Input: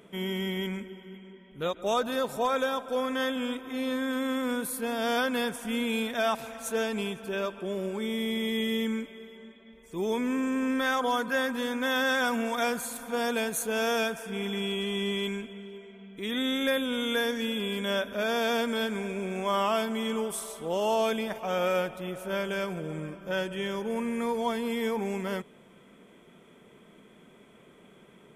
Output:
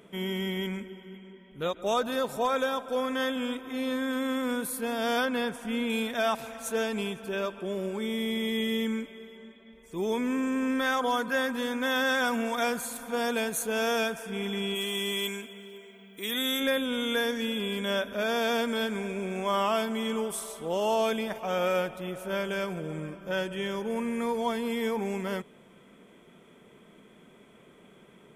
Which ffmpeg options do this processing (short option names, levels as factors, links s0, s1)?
-filter_complex "[0:a]asettb=1/sr,asplit=3[s0][s1][s2];[s0]atrim=end=5.254[s3];[s1]atrim=start=5.25:end=5.9,asetpts=PTS-STARTPTS,afade=t=in:d=0.004:c=qsin,afade=t=out:st=0.646:d=0.004:c=qsin,highshelf=f=5500:g=-9[s4];[s2]atrim=start=5.896[s5];[s3][s4]acrossfade=d=0.004:c1=hsin:c2=qsin[s6];[s6][s5]acrossfade=d=0.004:c1=qsin:c2=hsin,asplit=3[s7][s8][s9];[s7]afade=t=out:st=14.74:d=0.02[s10];[s8]aemphasis=mode=production:type=bsi,afade=t=in:st=14.74:d=0.02,afade=t=out:st=16.59:d=0.02[s11];[s9]afade=t=in:st=16.59:d=0.02[s12];[s10][s11][s12]amix=inputs=3:normalize=0"